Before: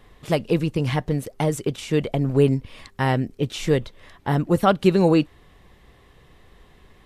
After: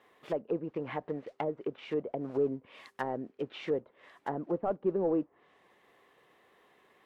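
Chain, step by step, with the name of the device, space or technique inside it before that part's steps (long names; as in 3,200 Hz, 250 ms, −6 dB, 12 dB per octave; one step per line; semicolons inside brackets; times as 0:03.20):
carbon microphone (band-pass filter 380–2,800 Hz; soft clipping −12.5 dBFS, distortion −16 dB; noise that follows the level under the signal 17 dB)
treble cut that deepens with the level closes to 640 Hz, closed at −23.5 dBFS
0:02.23–0:03.31: high-shelf EQ 5,200 Hz +8.5 dB
level −6 dB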